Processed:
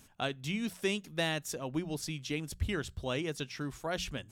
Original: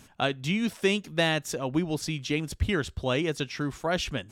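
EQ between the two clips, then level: bass shelf 75 Hz +5.5 dB; treble shelf 7.2 kHz +8.5 dB; hum notches 60/120/180 Hz; -8.0 dB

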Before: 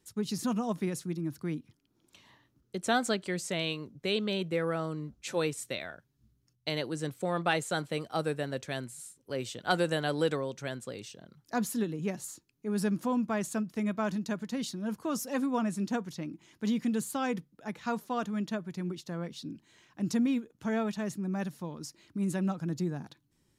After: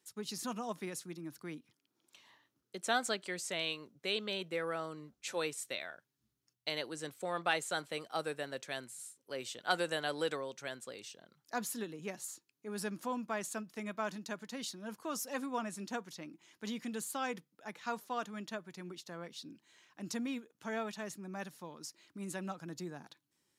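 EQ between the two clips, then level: high-pass 660 Hz 6 dB/octave; -2.0 dB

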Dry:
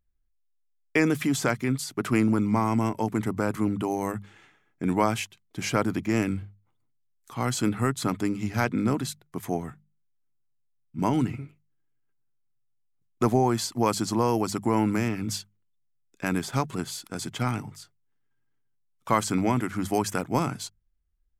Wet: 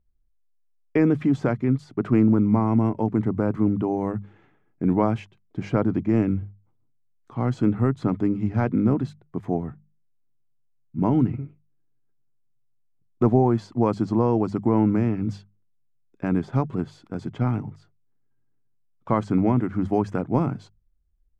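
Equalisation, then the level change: tape spacing loss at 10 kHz 24 dB; tilt shelf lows +6 dB, about 1.1 kHz; 0.0 dB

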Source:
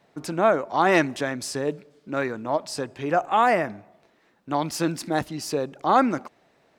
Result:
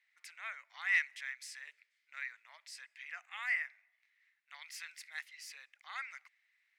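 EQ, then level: ladder high-pass 1.9 kHz, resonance 75%; -4.5 dB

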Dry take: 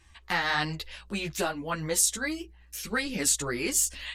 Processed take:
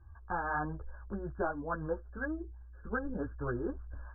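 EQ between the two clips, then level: brick-wall FIR low-pass 1.7 kHz; distance through air 350 m; resonant low shelf 130 Hz +6 dB, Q 3; -2.0 dB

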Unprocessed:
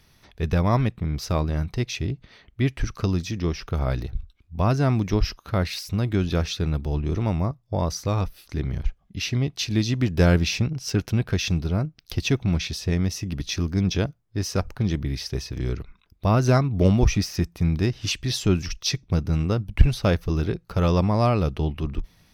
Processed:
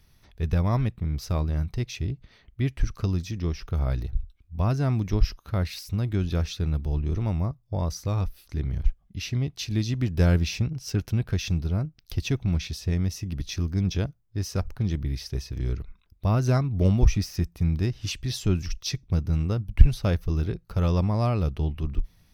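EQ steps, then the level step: bass shelf 110 Hz +11 dB; treble shelf 9.7 kHz +6.5 dB; -7.0 dB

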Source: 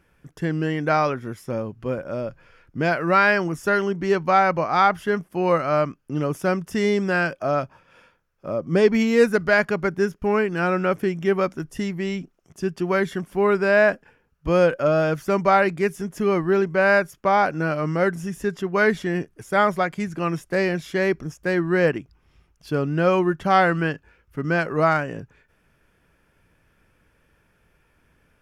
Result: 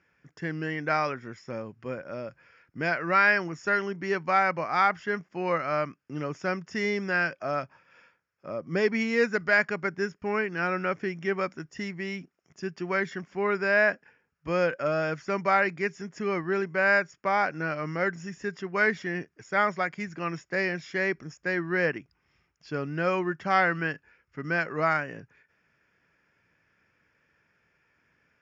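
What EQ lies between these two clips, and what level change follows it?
high-pass 100 Hz; rippled Chebyshev low-pass 7.1 kHz, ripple 9 dB; 0.0 dB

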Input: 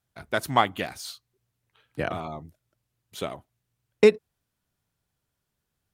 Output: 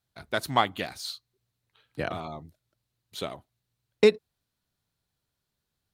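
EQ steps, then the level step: peaking EQ 4.1 kHz +7.5 dB 0.44 oct; -2.5 dB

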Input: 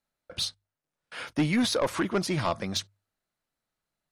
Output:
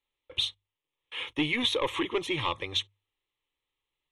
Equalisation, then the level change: distance through air 50 m; peaking EQ 3.4 kHz +14 dB 0.83 oct; static phaser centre 990 Hz, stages 8; 0.0 dB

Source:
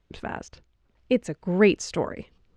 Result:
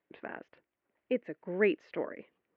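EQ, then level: cabinet simulation 300–2600 Hz, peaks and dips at 310 Hz +4 dB, 590 Hz +3 dB, 1.9 kHz +5 dB; dynamic bell 890 Hz, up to -6 dB, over -42 dBFS, Q 1.7; band-stop 1.3 kHz, Q 21; -7.5 dB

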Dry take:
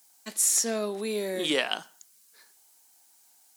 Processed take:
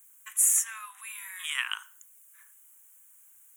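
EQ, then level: steep high-pass 1 kHz 72 dB/octave; Butterworth band-stop 4.6 kHz, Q 1.1; treble shelf 9.8 kHz +6.5 dB; 0.0 dB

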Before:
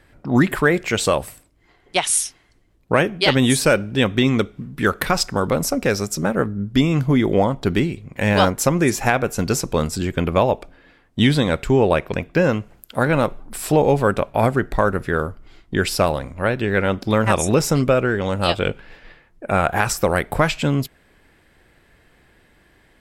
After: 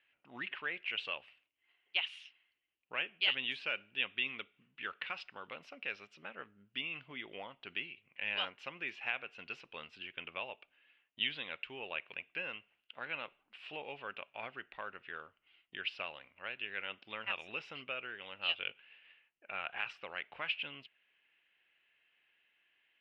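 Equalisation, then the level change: band-pass filter 2.8 kHz, Q 7; distance through air 340 m; +1.5 dB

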